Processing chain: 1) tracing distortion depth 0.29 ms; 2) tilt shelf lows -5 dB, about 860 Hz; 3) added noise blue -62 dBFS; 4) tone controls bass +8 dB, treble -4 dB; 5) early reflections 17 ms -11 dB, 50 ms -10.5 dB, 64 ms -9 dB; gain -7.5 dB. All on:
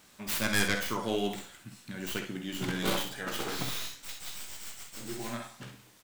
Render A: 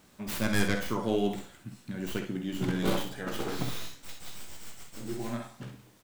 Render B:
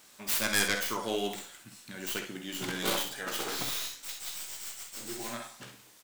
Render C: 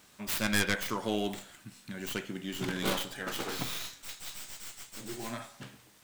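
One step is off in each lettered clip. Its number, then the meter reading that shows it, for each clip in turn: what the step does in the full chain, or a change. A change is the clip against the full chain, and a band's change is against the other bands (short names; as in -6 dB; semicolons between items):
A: 2, 125 Hz band +6.5 dB; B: 4, 125 Hz band -7.0 dB; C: 5, echo-to-direct -5.5 dB to none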